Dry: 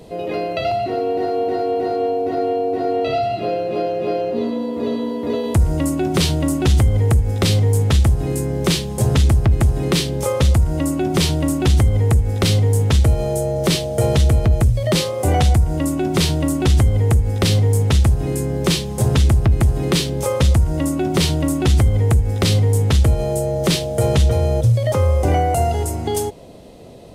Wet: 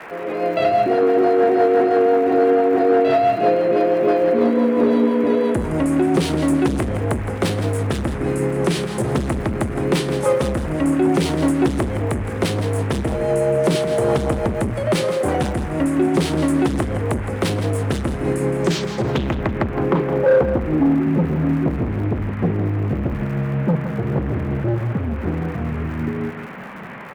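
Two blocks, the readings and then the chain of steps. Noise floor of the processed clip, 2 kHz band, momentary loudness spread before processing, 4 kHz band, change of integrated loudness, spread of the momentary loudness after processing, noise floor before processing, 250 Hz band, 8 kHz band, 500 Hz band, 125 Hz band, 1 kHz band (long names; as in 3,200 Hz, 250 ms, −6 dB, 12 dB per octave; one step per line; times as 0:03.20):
−27 dBFS, +1.5 dB, 6 LU, −8.0 dB, −1.5 dB, 8 LU, −25 dBFS, +2.5 dB, −8.5 dB, +3.0 dB, −7.0 dB, +1.5 dB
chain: rotating-speaker cabinet horn 6 Hz
automatic gain control gain up to 10.5 dB
low-pass filter sweep 10,000 Hz → 190 Hz, 0:18.49–0:21.03
noise in a band 370–2,400 Hz −35 dBFS
surface crackle 170 per second −24 dBFS
gain into a clipping stage and back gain 9.5 dB
three-way crossover with the lows and the highs turned down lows −15 dB, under 170 Hz, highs −13 dB, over 2,400 Hz
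repeating echo 166 ms, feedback 27%, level −10.5 dB
level −1 dB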